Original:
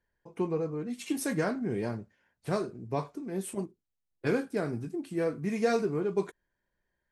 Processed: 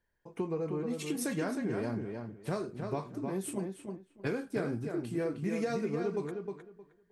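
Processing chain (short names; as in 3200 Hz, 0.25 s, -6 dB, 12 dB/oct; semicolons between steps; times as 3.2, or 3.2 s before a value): compressor, threshold -30 dBFS, peak gain reduction 9 dB; on a send: darkening echo 0.311 s, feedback 20%, low-pass 3500 Hz, level -5 dB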